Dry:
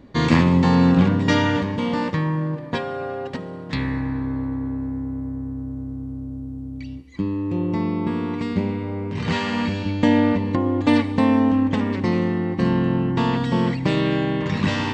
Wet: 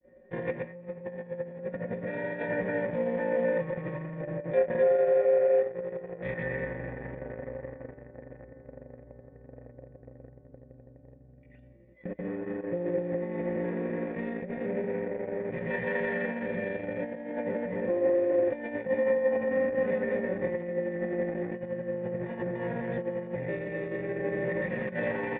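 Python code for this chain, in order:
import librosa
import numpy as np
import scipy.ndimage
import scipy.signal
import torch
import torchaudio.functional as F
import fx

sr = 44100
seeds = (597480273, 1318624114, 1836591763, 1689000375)

p1 = fx.granulator(x, sr, seeds[0], grain_ms=100.0, per_s=20.0, spray_ms=100.0, spread_st=0)
p2 = p1 + 0.99 * np.pad(p1, (int(5.5 * sr / 1000.0), 0))[:len(p1)]
p3 = np.repeat(p2[::6], 6)[:len(p2)]
p4 = fx.stretch_grains(p3, sr, factor=1.7, grain_ms=84.0)
p5 = fx.fuzz(p4, sr, gain_db=30.0, gate_db=-29.0)
p6 = p4 + (p5 * 10.0 ** (-7.0 / 20.0))
p7 = fx.peak_eq(p6, sr, hz=2600.0, db=-5.0, octaves=0.24)
p8 = fx.small_body(p7, sr, hz=(780.0, 1500.0, 2900.0), ring_ms=45, db=6)
p9 = fx.over_compress(p8, sr, threshold_db=-17.0, ratio=-0.5)
y = fx.formant_cascade(p9, sr, vowel='e')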